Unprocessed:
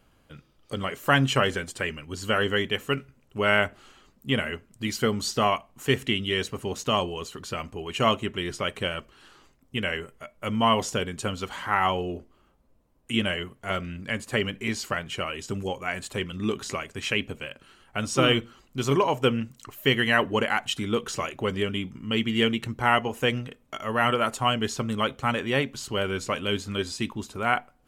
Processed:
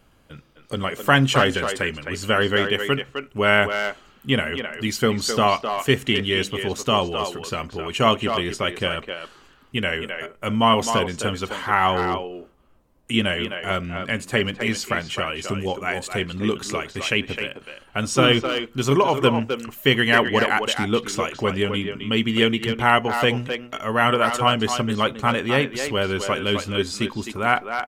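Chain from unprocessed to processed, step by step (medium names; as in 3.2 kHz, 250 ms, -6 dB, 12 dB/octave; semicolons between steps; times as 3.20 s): speakerphone echo 260 ms, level -6 dB; trim +4.5 dB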